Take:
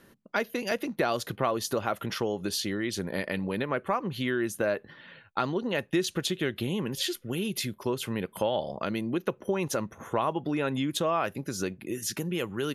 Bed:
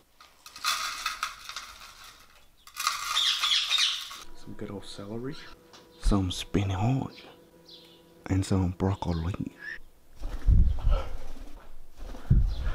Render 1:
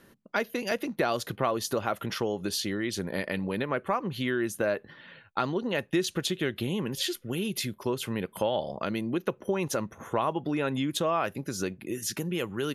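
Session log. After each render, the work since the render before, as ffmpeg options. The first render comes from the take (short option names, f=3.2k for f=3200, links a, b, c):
-af anull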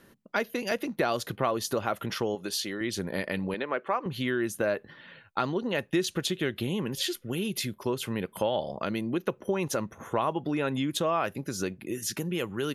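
-filter_complex "[0:a]asettb=1/sr,asplit=3[a][b][c];[a]atrim=end=2.354[d];[b]atrim=start=2.35:end=2.81,asetpts=PTS-STARTPTS,afade=t=in:d=0.004:c=qsin,afade=t=out:st=0.456:d=0.004:c=qsin,highpass=f=360:p=1[e];[c]atrim=start=2.806[f];[d][e]acrossfade=d=0.004:c1=hsin:c2=qsin[g];[g][f]acrossfade=d=0.004:c1=qsin:c2=hsin,asettb=1/sr,asplit=3[h][i][j];[h]atrim=end=3.544[k];[i]atrim=start=3.54:end=4.06,asetpts=PTS-STARTPTS,afade=t=in:d=0.004:c=qsin,afade=t=out:st=0.516:d=0.004:c=qsin,highpass=320,lowpass=4.7k[l];[j]atrim=start=4.056[m];[k][l]acrossfade=d=0.004:c1=hsin:c2=qsin[n];[n][m]acrossfade=d=0.004:c1=qsin:c2=hsin"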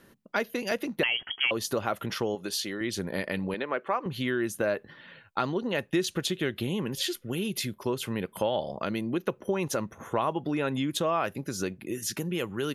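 -filter_complex "[0:a]asettb=1/sr,asplit=3[a][b][c];[a]atrim=end=1.034[d];[b]atrim=start=1.03:end=1.51,asetpts=PTS-STARTPTS,afade=t=in:d=0.004:c=qsin,afade=t=out:st=0.476:d=0.004:c=qsin,lowpass=f=2.9k:t=q:w=0.5098,lowpass=f=2.9k:t=q:w=0.6013,lowpass=f=2.9k:t=q:w=0.9,lowpass=f=2.9k:t=q:w=2.563,afreqshift=-3400[e];[c]atrim=start=1.506[f];[d][e]acrossfade=d=0.004:c1=hsin:c2=qsin[g];[g][f]acrossfade=d=0.004:c1=qsin:c2=hsin"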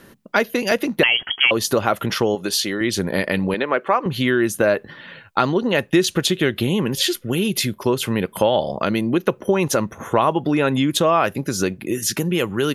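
-af "volume=10.5dB"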